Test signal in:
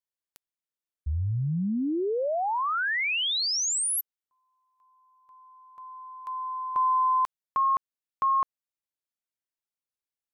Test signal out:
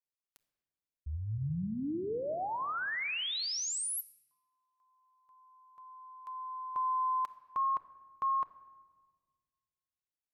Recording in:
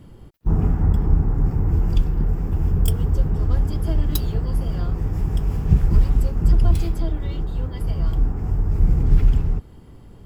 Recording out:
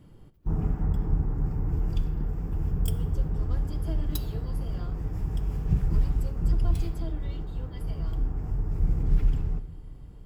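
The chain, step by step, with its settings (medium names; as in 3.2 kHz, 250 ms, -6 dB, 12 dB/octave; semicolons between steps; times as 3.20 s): simulated room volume 1600 m³, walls mixed, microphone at 0.47 m; trim -8.5 dB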